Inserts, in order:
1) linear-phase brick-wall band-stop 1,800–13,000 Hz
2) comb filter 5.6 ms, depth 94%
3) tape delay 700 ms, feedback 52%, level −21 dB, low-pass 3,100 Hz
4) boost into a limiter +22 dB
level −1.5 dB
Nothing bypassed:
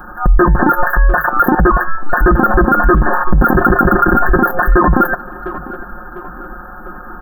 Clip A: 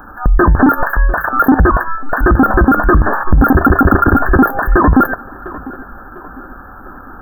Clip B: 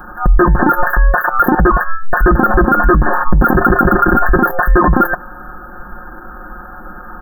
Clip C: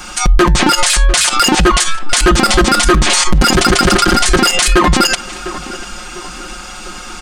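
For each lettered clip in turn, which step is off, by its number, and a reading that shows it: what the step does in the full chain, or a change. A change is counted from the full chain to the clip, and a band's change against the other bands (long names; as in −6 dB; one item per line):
2, 250 Hz band +3.5 dB
3, change in momentary loudness spread −5 LU
1, change in momentary loudness spread −2 LU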